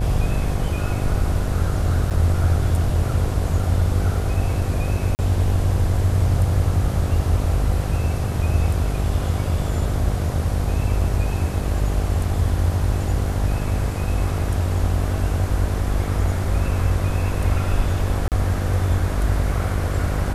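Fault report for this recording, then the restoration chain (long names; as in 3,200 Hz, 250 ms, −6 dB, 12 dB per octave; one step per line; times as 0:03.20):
mains buzz 50 Hz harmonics 16 −25 dBFS
0:02.10–0:02.11: drop-out 7.6 ms
0:05.15–0:05.19: drop-out 39 ms
0:18.28–0:18.32: drop-out 38 ms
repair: hum removal 50 Hz, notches 16
repair the gap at 0:02.10, 7.6 ms
repair the gap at 0:05.15, 39 ms
repair the gap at 0:18.28, 38 ms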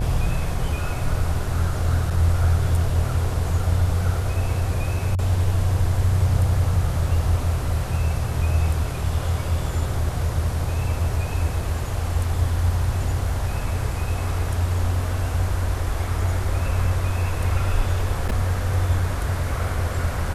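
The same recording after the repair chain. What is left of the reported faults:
none of them is left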